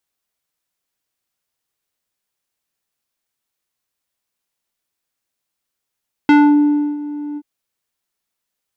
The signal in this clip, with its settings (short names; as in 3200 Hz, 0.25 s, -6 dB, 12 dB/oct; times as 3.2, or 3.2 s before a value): synth note square D4 12 dB/oct, low-pass 470 Hz, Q 1, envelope 2.5 oct, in 0.27 s, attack 2.2 ms, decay 0.68 s, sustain -17.5 dB, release 0.05 s, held 1.08 s